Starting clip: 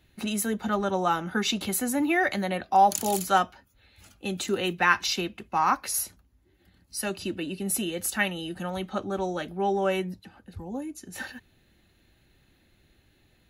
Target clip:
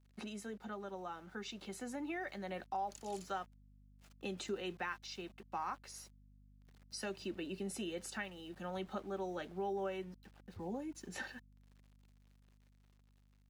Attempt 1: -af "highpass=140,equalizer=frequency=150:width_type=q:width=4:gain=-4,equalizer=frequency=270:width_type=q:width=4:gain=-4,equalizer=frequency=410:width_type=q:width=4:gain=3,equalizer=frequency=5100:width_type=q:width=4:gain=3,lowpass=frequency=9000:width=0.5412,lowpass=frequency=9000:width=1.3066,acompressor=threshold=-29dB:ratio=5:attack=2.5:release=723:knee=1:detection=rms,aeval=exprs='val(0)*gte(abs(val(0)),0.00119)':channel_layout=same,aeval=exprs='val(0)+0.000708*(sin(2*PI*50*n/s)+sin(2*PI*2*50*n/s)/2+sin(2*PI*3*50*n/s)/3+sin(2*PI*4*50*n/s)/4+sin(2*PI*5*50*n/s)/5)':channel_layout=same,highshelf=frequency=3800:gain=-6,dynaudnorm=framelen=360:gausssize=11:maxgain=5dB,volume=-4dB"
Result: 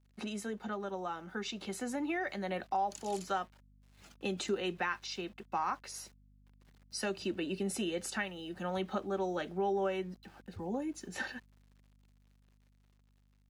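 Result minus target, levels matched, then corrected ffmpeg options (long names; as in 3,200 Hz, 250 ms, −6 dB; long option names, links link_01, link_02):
downward compressor: peak gain reduction −6.5 dB
-af "highpass=140,equalizer=frequency=150:width_type=q:width=4:gain=-4,equalizer=frequency=270:width_type=q:width=4:gain=-4,equalizer=frequency=410:width_type=q:width=4:gain=3,equalizer=frequency=5100:width_type=q:width=4:gain=3,lowpass=frequency=9000:width=0.5412,lowpass=frequency=9000:width=1.3066,acompressor=threshold=-37dB:ratio=5:attack=2.5:release=723:knee=1:detection=rms,aeval=exprs='val(0)*gte(abs(val(0)),0.00119)':channel_layout=same,aeval=exprs='val(0)+0.000708*(sin(2*PI*50*n/s)+sin(2*PI*2*50*n/s)/2+sin(2*PI*3*50*n/s)/3+sin(2*PI*4*50*n/s)/4+sin(2*PI*5*50*n/s)/5)':channel_layout=same,highshelf=frequency=3800:gain=-6,dynaudnorm=framelen=360:gausssize=11:maxgain=5dB,volume=-4dB"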